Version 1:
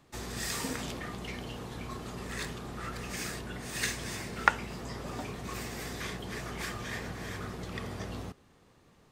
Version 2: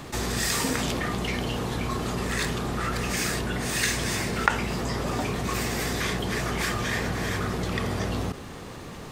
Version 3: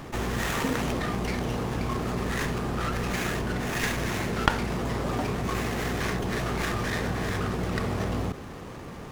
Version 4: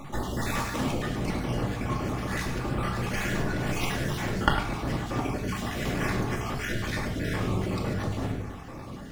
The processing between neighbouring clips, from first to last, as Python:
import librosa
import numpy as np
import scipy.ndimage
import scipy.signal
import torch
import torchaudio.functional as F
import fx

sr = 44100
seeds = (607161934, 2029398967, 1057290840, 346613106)

y1 = fx.env_flatten(x, sr, amount_pct=50)
y1 = y1 * 10.0 ** (1.0 / 20.0)
y2 = fx.running_max(y1, sr, window=9)
y3 = fx.spec_dropout(y2, sr, seeds[0], share_pct=35)
y3 = y3 + 10.0 ** (-11.5 / 20.0) * np.pad(y3, (int(102 * sr / 1000.0), 0))[:len(y3)]
y3 = fx.room_shoebox(y3, sr, seeds[1], volume_m3=980.0, walls='furnished', distance_m=2.4)
y3 = y3 * 10.0 ** (-2.5 / 20.0)